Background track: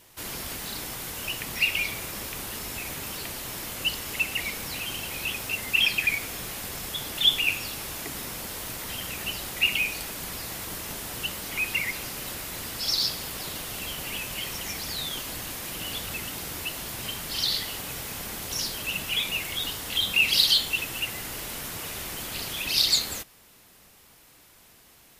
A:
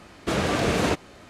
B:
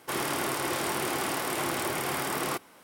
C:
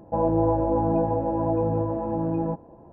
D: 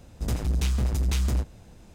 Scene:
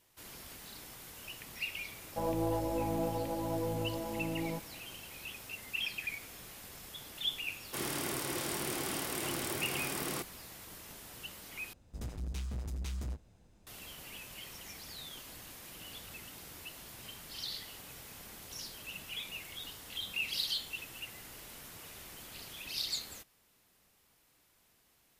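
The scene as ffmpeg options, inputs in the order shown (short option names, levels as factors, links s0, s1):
-filter_complex "[0:a]volume=0.188[s0];[3:a]aeval=exprs='if(lt(val(0),0),0.708*val(0),val(0))':c=same[s1];[2:a]equalizer=f=1000:w=0.5:g=-8.5[s2];[s0]asplit=2[s3][s4];[s3]atrim=end=11.734[s5];[4:a]atrim=end=1.94,asetpts=PTS-STARTPTS,volume=0.2[s6];[s4]atrim=start=13.666[s7];[s1]atrim=end=2.92,asetpts=PTS-STARTPTS,volume=0.316,afade=t=in:d=0.004:c=hsin,afade=t=out:st=2.916:d=0.004:c=hsin,adelay=2040[s8];[s2]atrim=end=2.83,asetpts=PTS-STARTPTS,volume=0.708,afade=t=in:d=0.004:c=hsin,afade=t=out:st=2.826:d=0.004:c=hsin,adelay=7650[s9];[s5][s6]acrossfade=d=0.004:c1=hsin:c2=hsin[s10];[s10][s7]acrossfade=d=0.004:c1=hsin:c2=hsin[s11];[s11][s8][s9]amix=inputs=3:normalize=0"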